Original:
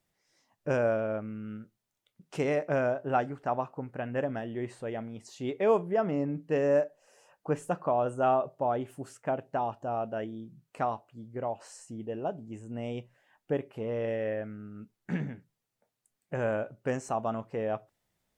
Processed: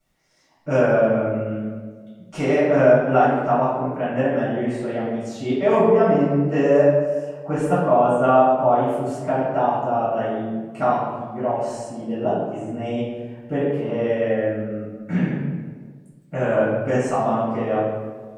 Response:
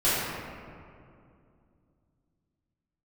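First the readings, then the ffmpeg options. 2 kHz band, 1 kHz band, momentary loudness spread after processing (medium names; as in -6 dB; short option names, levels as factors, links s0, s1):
+10.5 dB, +11.5 dB, 13 LU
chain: -filter_complex "[1:a]atrim=start_sample=2205,asetrate=83790,aresample=44100[s0];[0:a][s0]afir=irnorm=-1:irlink=0"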